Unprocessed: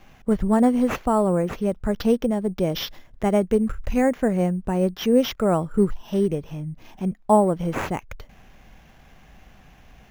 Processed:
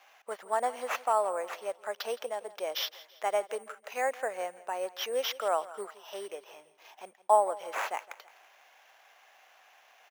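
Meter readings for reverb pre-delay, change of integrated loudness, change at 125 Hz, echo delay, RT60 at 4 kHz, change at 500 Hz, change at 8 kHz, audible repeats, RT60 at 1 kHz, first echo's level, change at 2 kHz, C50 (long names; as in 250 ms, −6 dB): no reverb audible, −10.0 dB, below −40 dB, 166 ms, no reverb audible, −9.5 dB, −3.0 dB, 3, no reverb audible, −18.5 dB, −3.0 dB, no reverb audible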